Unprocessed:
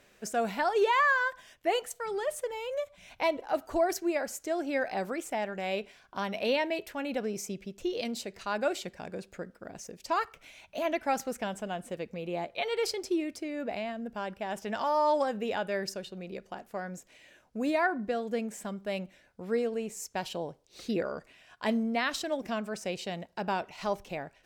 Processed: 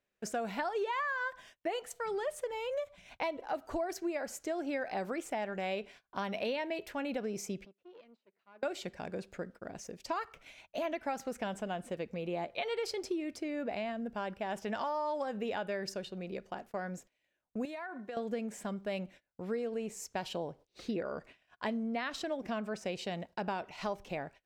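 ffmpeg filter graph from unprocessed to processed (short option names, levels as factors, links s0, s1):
-filter_complex "[0:a]asettb=1/sr,asplit=3[s0][s1][s2];[s0]atrim=end=7.654[s3];[s1]atrim=start=7.65:end=8.63,asetpts=PTS-STARTPTS,afade=t=in:d=0.004:c=qsin,afade=t=out:st=0.976:d=0.004:c=qsin,acompressor=threshold=0.00501:ratio=6:attack=3.2:release=140:knee=1:detection=peak,aeval=exprs='(tanh(200*val(0)+0.5)-tanh(0.5))/200':c=same,highpass=250,lowpass=2900[s4];[s2]atrim=start=8.626[s5];[s3][s4]acrossfade=d=0.004:c1=hsin:c2=qsin[s6];[s6][s5]acrossfade=d=0.004:c1=qsin:c2=hsin,asettb=1/sr,asplit=3[s7][s8][s9];[s7]atrim=end=17.654[s10];[s8]atrim=start=17.65:end=18.17,asetpts=PTS-STARTPTS,afade=t=in:d=0.004:c=qsin,afade=t=out:st=0.516:d=0.004:c=qsin,highpass=f=670:p=1,bandreject=f=4800:w=9.4,acompressor=threshold=0.0141:ratio=16:attack=3.2:release=140:knee=1:detection=peak[s11];[s9]atrim=start=18.166[s12];[s10][s11]acrossfade=d=0.004:c1=hsin:c2=qsin[s13];[s13][s12]acrossfade=d=0.004:c1=qsin:c2=hsin,asettb=1/sr,asplit=3[s14][s15][s16];[s14]atrim=end=20.484[s17];[s15]atrim=start=20.48:end=22.86,asetpts=PTS-STARTPTS,afade=t=in:d=0.004:c=qsin,afade=t=out:st=2.376:d=0.004:c=qsin,highshelf=f=5000:g=-5,acompressor=mode=upward:threshold=0.00398:ratio=2.5:attack=3.2:release=140:knee=2.83:detection=peak[s18];[s16]atrim=start=22.856[s19];[s17][s18]acrossfade=d=0.004:c1=hsin:c2=qsin[s20];[s20][s19]acrossfade=d=0.004:c1=qsin:c2=hsin,agate=range=0.0631:threshold=0.00251:ratio=16:detection=peak,highshelf=f=6700:g=-7.5,acompressor=threshold=0.0251:ratio=6"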